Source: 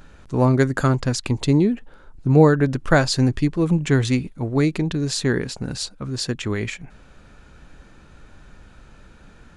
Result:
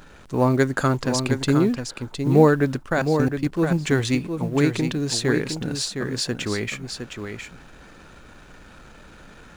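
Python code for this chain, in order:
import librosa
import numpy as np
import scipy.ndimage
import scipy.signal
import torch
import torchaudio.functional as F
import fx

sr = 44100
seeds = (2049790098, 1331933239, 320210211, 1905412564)

y = fx.law_mismatch(x, sr, coded='mu')
y = fx.low_shelf(y, sr, hz=140.0, db=-9.0)
y = fx.level_steps(y, sr, step_db=20, at=(2.83, 3.52))
y = y + 10.0 ** (-7.0 / 20.0) * np.pad(y, (int(712 * sr / 1000.0), 0))[:len(y)]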